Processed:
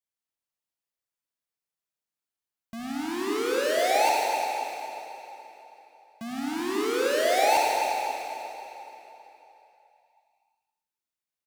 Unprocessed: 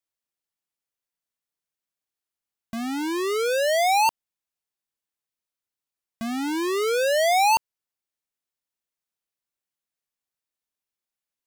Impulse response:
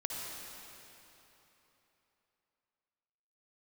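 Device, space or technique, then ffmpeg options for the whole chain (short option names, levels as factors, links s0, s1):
cave: -filter_complex "[0:a]aecho=1:1:274:0.15[s0];[1:a]atrim=start_sample=2205[s1];[s0][s1]afir=irnorm=-1:irlink=0,asettb=1/sr,asplit=3[s2][s3][s4];[s2]atrim=end=3.784[s5];[s3]atrim=start=3.78:end=6.6,asetpts=PTS-STARTPTS,afade=t=in:d=0.004:c=qsin,afade=t=out:st=2.816:d=0.004:c=qsin,highpass=f=100:w=0.5412,highpass=f=100:w=1.3066[s6];[s4]atrim=start=6.596[s7];[s5][s6]acrossfade=d=0.004:c1=hsin:c2=qsin[s8];[s8][s7]acrossfade=d=0.004:c1=qsin:c2=hsin,volume=0.562"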